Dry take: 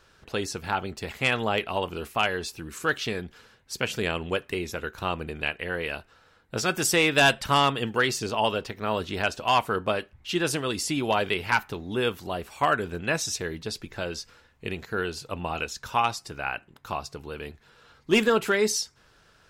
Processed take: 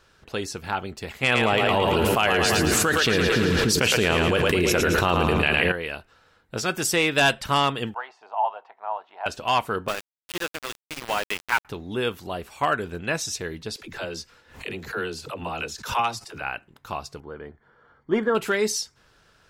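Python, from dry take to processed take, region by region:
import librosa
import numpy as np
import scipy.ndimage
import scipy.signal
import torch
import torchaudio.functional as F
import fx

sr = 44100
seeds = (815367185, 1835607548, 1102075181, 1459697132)

y = fx.chain(x, sr, fx.echo_split(split_hz=370.0, low_ms=292, high_ms=111, feedback_pct=52, wet_db=-7),
    fx.env_flatten(amount_pct=100), at=(1.23, 5.72))
y = fx.chain(y, sr, fx.ladder_bandpass(hz=1000.0, resonance_pct=65),
    fx.peak_eq(hz=700.0, db=13.0, octaves=0.57), at=(7.94, 9.26))
y = fx.chain(y, sr, fx.lowpass(hz=2200.0, slope=12),
    fx.tilt_eq(slope=3.5),
    fx.sample_gate(floor_db=-26.5), at=(9.88, 11.65))
y = fx.chain(y, sr, fx.low_shelf(hz=120.0, db=-6.5),
    fx.dispersion(late='lows', ms=62.0, hz=320.0),
    fx.pre_swell(db_per_s=120.0), at=(13.76, 16.42))
y = fx.chain(y, sr, fx.savgol(points=41),
    fx.low_shelf(hz=110.0, db=-7.0), at=(17.2, 18.35))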